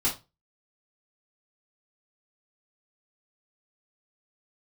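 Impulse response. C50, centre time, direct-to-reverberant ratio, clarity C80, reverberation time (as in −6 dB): 10.5 dB, 19 ms, −7.0 dB, 18.5 dB, 0.25 s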